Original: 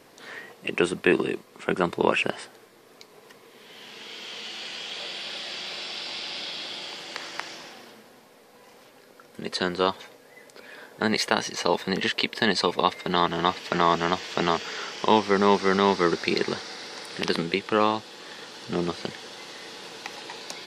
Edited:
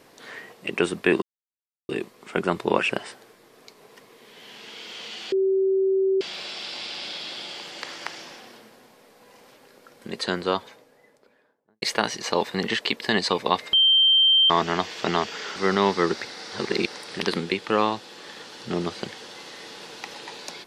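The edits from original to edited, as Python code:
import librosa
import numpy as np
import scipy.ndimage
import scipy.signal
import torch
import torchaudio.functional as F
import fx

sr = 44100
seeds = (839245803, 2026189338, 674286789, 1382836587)

y = fx.studio_fade_out(x, sr, start_s=9.58, length_s=1.57)
y = fx.edit(y, sr, fx.insert_silence(at_s=1.22, length_s=0.67),
    fx.bleep(start_s=4.65, length_s=0.89, hz=384.0, db=-18.0),
    fx.bleep(start_s=13.06, length_s=0.77, hz=3140.0, db=-14.0),
    fx.cut(start_s=14.89, length_s=0.69),
    fx.reverse_span(start_s=16.27, length_s=0.61), tone=tone)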